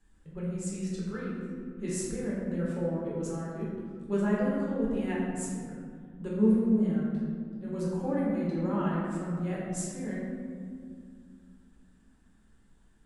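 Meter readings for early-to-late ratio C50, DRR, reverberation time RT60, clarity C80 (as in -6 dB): -1.5 dB, -7.0 dB, 2.1 s, 1.0 dB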